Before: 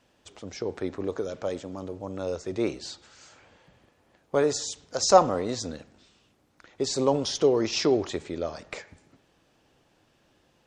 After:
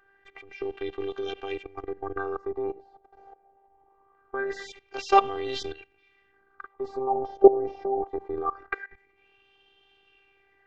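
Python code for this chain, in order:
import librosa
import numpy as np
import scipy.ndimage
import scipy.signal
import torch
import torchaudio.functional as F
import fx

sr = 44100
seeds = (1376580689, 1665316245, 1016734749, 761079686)

y = fx.level_steps(x, sr, step_db=18)
y = fx.filter_lfo_lowpass(y, sr, shape='sine', hz=0.23, low_hz=680.0, high_hz=3100.0, q=7.1)
y = fx.robotise(y, sr, hz=393.0)
y = y * librosa.db_to_amplitude(6.5)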